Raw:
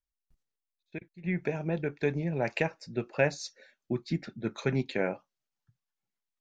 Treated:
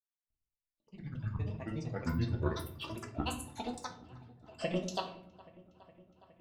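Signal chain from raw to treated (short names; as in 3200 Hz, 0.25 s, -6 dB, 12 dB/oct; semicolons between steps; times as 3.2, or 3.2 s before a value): gate -54 dBFS, range -23 dB; grains, grains 8.3/s, spray 15 ms, pitch spread up and down by 12 st; bell 660 Hz -7 dB 2.7 oct; small resonant body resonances 650/2700 Hz, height 17 dB, ringing for 55 ms; in parallel at +3 dB: limiter -28.5 dBFS, peak gain reduction 11.5 dB; on the sum: step gate ".xxx.x...xx" 66 bpm -24 dB; on a send: dark delay 0.414 s, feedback 74%, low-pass 2200 Hz, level -20.5 dB; on the sum: shoebox room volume 77 m³, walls mixed, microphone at 0.57 m; echoes that change speed 0.118 s, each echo +5 st, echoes 2, each echo -6 dB; bell 76 Hz +2.5 dB; de-hum 92.19 Hz, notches 3; gain -4.5 dB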